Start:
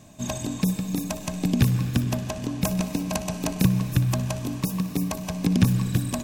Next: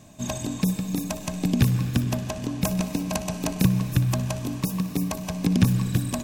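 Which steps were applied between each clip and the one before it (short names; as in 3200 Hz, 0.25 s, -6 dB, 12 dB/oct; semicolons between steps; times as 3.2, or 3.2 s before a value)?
nothing audible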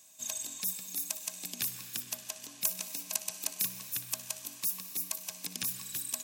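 differentiator; gain +1 dB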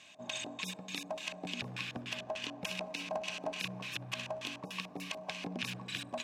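LFO low-pass square 3.4 Hz 710–2800 Hz; limiter -31.5 dBFS, peak gain reduction 11.5 dB; gain +8.5 dB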